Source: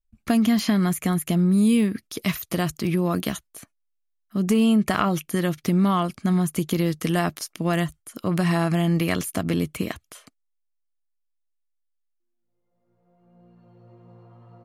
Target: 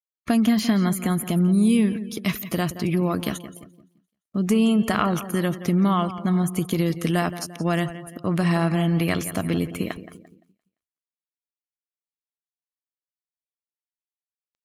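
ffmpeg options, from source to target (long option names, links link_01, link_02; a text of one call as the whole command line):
ffmpeg -i in.wav -af "aeval=exprs='val(0)*gte(abs(val(0)),0.0106)':channel_layout=same,aecho=1:1:172|344|516|688|860:0.224|0.107|0.0516|0.0248|0.0119,afftdn=noise_reduction=19:noise_floor=-45" out.wav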